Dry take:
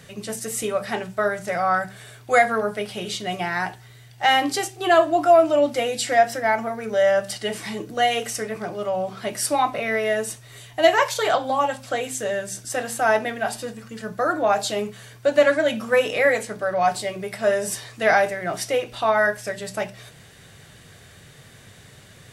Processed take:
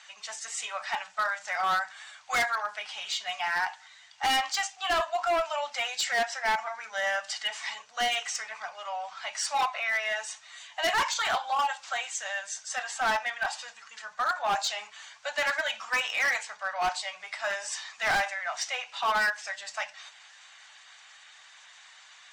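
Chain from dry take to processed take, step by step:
spectral magnitudes quantised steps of 15 dB
elliptic band-pass filter 850–7,000 Hz, stop band 40 dB
hard clipping −22.5 dBFS, distortion −9 dB

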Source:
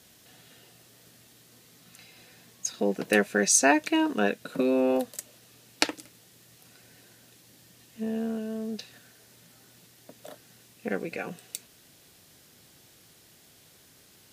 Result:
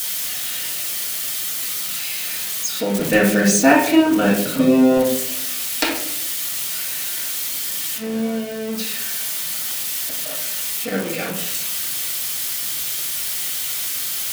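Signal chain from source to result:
spike at every zero crossing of −19 dBFS
0:02.99–0:05.11: low-shelf EQ 180 Hz +11.5 dB
convolution reverb RT60 0.65 s, pre-delay 3 ms, DRR −7.5 dB
level −1 dB

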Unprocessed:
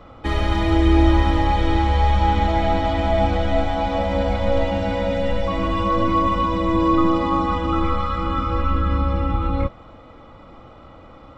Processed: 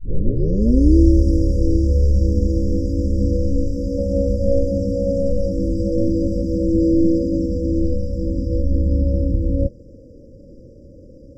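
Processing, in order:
turntable start at the beginning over 0.96 s
linear-phase brick-wall band-stop 590–4,700 Hz
level +3 dB

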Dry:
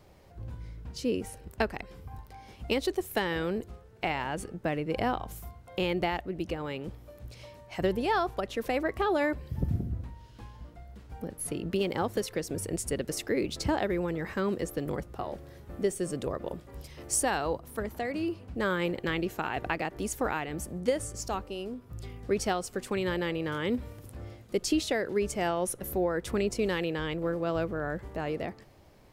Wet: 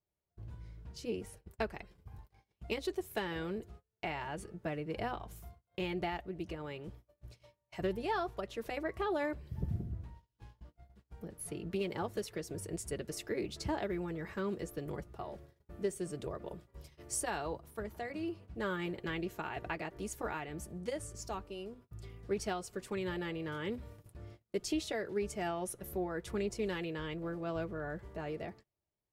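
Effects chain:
noise gate −45 dBFS, range −28 dB
notch comb filter 260 Hz
highs frequency-modulated by the lows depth 0.19 ms
level −6.5 dB

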